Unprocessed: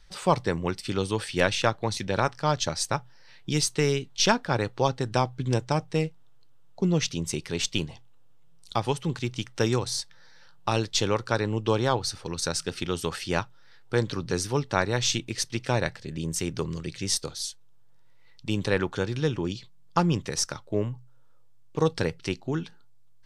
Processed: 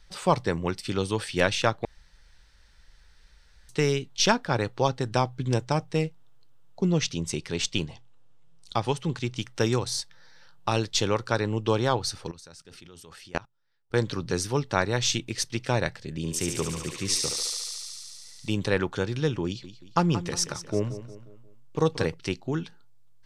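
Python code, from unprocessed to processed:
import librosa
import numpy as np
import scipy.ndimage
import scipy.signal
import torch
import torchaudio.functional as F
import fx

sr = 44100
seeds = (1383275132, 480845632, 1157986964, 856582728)

y = fx.lowpass(x, sr, hz=9500.0, slope=12, at=(6.92, 9.37))
y = fx.level_steps(y, sr, step_db=24, at=(12.31, 13.94))
y = fx.echo_thinned(y, sr, ms=71, feedback_pct=84, hz=470.0, wet_db=-4, at=(16.17, 18.52))
y = fx.echo_feedback(y, sr, ms=178, feedback_pct=44, wet_db=-13.0, at=(19.46, 22.14))
y = fx.edit(y, sr, fx.room_tone_fill(start_s=1.85, length_s=1.84), tone=tone)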